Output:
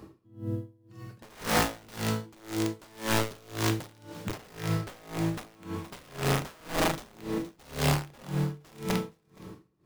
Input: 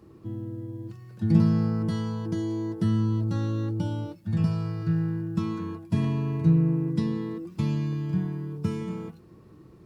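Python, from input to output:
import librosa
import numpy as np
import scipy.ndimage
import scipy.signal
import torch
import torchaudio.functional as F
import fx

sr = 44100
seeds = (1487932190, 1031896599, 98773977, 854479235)

p1 = fx.low_shelf(x, sr, hz=480.0, db=-5.0)
p2 = fx.rider(p1, sr, range_db=4, speed_s=2.0)
p3 = p1 + (p2 * librosa.db_to_amplitude(-1.0))
p4 = (np.mod(10.0 ** (21.0 / 20.0) * p3 + 1.0, 2.0) - 1.0) / 10.0 ** (21.0 / 20.0)
p5 = p4 + fx.echo_single(p4, sr, ms=469, db=-20.5, dry=0)
p6 = fx.rev_double_slope(p5, sr, seeds[0], early_s=0.65, late_s=2.9, knee_db=-18, drr_db=5.0)
p7 = p6 * 10.0 ** (-31 * (0.5 - 0.5 * np.cos(2.0 * np.pi * 1.9 * np.arange(len(p6)) / sr)) / 20.0)
y = p7 * librosa.db_to_amplitude(2.0)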